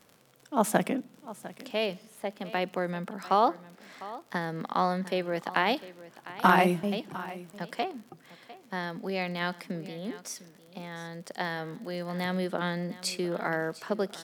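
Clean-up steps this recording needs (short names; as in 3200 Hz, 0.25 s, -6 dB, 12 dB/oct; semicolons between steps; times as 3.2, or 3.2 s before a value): clip repair -9 dBFS; de-click; inverse comb 0.702 s -17 dB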